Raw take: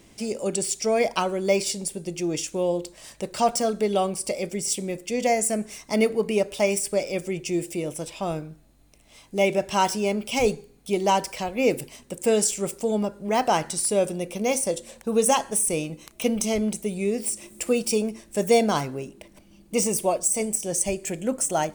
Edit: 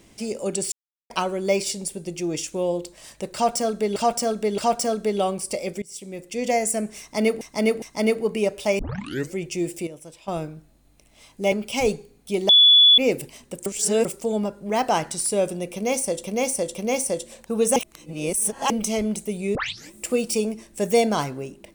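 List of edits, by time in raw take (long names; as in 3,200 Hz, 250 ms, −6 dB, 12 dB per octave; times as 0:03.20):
0:00.72–0:01.10: silence
0:03.34–0:03.96: repeat, 3 plays
0:04.58–0:05.21: fade in linear, from −23 dB
0:05.76–0:06.17: repeat, 3 plays
0:06.73: tape start 0.55 s
0:07.81–0:08.22: clip gain −10 dB
0:09.46–0:10.11: remove
0:11.08–0:11.57: beep over 3,430 Hz −9.5 dBFS
0:12.25–0:12.64: reverse
0:14.32–0:14.83: repeat, 3 plays
0:15.33–0:16.27: reverse
0:17.12: tape start 0.37 s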